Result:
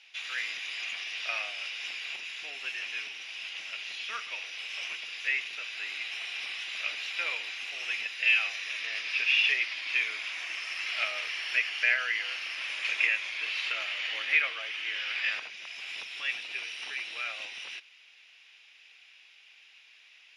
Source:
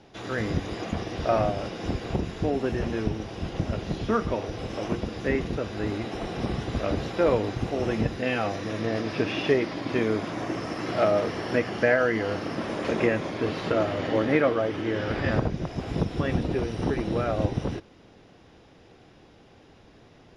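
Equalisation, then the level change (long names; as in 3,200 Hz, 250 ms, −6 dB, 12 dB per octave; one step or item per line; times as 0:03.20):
high-pass with resonance 2,500 Hz, resonance Q 4.2
0.0 dB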